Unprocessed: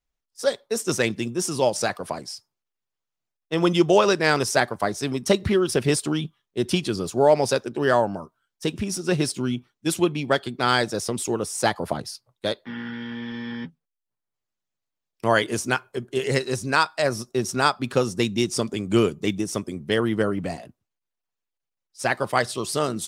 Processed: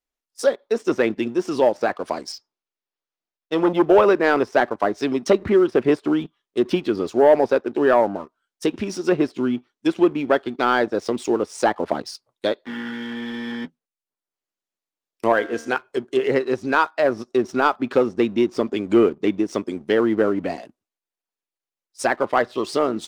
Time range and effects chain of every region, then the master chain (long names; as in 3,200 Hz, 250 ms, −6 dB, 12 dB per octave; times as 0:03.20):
0:02.32–0:03.84: low-pass filter 6,100 Hz 24 dB per octave + saturating transformer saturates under 980 Hz
0:15.32–0:15.76: tuned comb filter 76 Hz, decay 0.92 s, mix 50% + hollow resonant body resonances 490/720/1,600 Hz, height 11 dB, ringing for 95 ms
whole clip: treble cut that deepens with the level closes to 1,800 Hz, closed at −20 dBFS; low shelf with overshoot 200 Hz −9.5 dB, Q 1.5; leveller curve on the samples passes 1